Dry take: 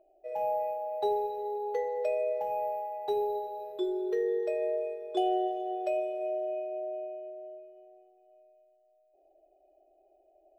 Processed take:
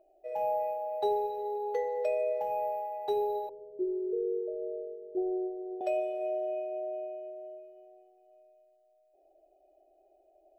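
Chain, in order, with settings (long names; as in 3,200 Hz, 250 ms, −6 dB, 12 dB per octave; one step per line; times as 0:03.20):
0:03.49–0:05.81: inverse Chebyshev low-pass filter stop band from 2,700 Hz, stop band 80 dB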